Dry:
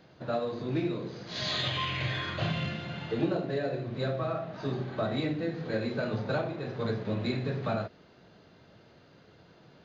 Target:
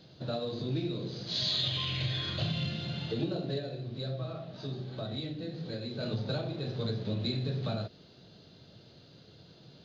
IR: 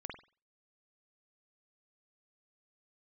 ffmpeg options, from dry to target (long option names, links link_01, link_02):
-filter_complex "[0:a]equalizer=frequency=125:width_type=o:width=1:gain=5,equalizer=frequency=1000:width_type=o:width=1:gain=-6,equalizer=frequency=2000:width_type=o:width=1:gain=-7,equalizer=frequency=4000:width_type=o:width=1:gain=11,acompressor=threshold=-32dB:ratio=2,asplit=3[link_01][link_02][link_03];[link_01]afade=type=out:start_time=3.59:duration=0.02[link_04];[link_02]flanger=delay=7.3:depth=9.6:regen=74:speed=1.2:shape=sinusoidal,afade=type=in:start_time=3.59:duration=0.02,afade=type=out:start_time=5.99:duration=0.02[link_05];[link_03]afade=type=in:start_time=5.99:duration=0.02[link_06];[link_04][link_05][link_06]amix=inputs=3:normalize=0"